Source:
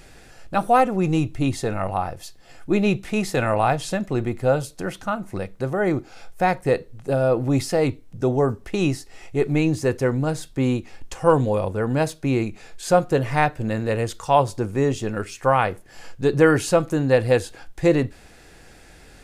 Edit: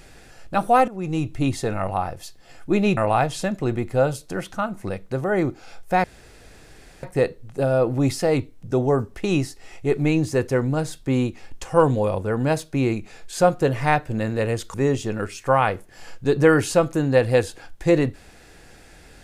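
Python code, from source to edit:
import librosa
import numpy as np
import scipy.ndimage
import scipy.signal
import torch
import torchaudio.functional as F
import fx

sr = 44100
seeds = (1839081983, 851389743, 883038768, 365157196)

y = fx.edit(x, sr, fx.fade_in_from(start_s=0.88, length_s=0.49, floor_db=-14.5),
    fx.cut(start_s=2.97, length_s=0.49),
    fx.insert_room_tone(at_s=6.53, length_s=0.99),
    fx.cut(start_s=14.24, length_s=0.47), tone=tone)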